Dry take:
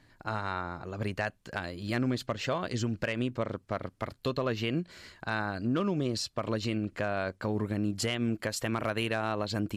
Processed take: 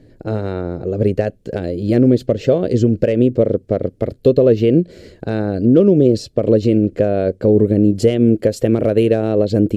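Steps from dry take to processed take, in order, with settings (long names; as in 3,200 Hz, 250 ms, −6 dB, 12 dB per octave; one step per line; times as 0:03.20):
low shelf with overshoot 700 Hz +13 dB, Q 3
level +2.5 dB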